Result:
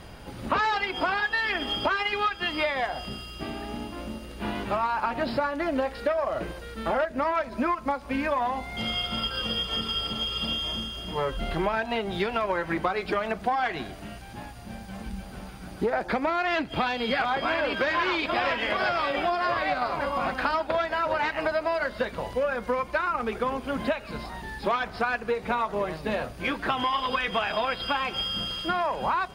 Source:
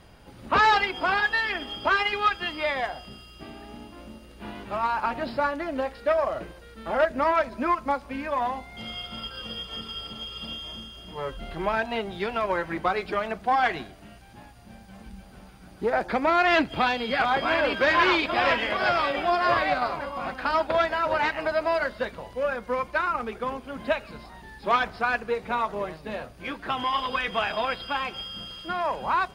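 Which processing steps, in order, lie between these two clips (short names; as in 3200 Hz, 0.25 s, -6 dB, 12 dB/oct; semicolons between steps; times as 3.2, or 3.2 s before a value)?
compressor 6:1, threshold -31 dBFS, peak gain reduction 14.5 dB; gain +7.5 dB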